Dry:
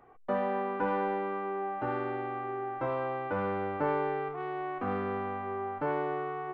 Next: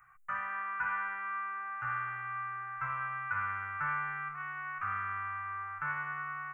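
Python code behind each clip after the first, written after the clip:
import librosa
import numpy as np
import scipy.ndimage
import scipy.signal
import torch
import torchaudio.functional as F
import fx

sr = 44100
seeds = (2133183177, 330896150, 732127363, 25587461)

y = fx.curve_eq(x, sr, hz=(150.0, 230.0, 460.0, 760.0, 1300.0, 2500.0, 4600.0, 6800.0), db=(0, -29, -29, -14, 14, 8, -25, 14))
y = F.gain(torch.from_numpy(y), -5.5).numpy()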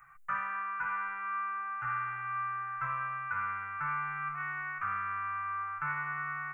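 y = x + 0.39 * np.pad(x, (int(5.9 * sr / 1000.0), 0))[:len(x)]
y = fx.rider(y, sr, range_db=10, speed_s=0.5)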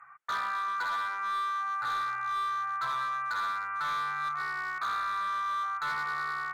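y = fx.bandpass_q(x, sr, hz=870.0, q=0.76)
y = np.clip(10.0 ** (35.0 / 20.0) * y, -1.0, 1.0) / 10.0 ** (35.0 / 20.0)
y = F.gain(torch.from_numpy(y), 6.5).numpy()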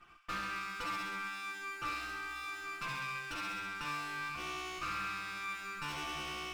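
y = fx.lower_of_two(x, sr, delay_ms=5.7)
y = fx.echo_wet_highpass(y, sr, ms=67, feedback_pct=75, hz=1400.0, wet_db=-5.0)
y = F.gain(torch.from_numpy(y), -5.5).numpy()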